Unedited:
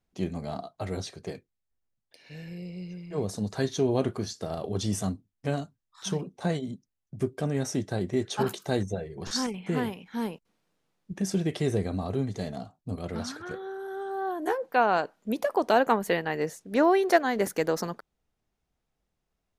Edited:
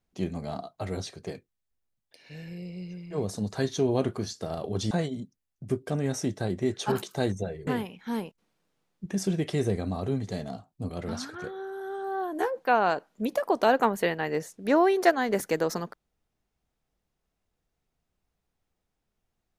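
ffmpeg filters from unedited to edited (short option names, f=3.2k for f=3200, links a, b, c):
-filter_complex "[0:a]asplit=3[a][b][c];[a]atrim=end=4.912[d];[b]atrim=start=6.418:end=9.182[e];[c]atrim=start=9.738[f];[d][e]acrossfade=d=0.004:c1=hsin:c2=hsin[g];[g][f]acrossfade=d=0.004:c1=hsin:c2=hsin"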